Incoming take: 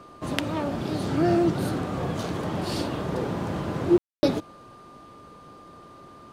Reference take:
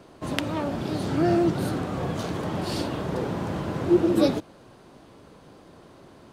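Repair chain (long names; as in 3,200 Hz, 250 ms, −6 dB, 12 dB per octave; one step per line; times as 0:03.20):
notch filter 1,200 Hz, Q 30
ambience match 0:03.98–0:04.23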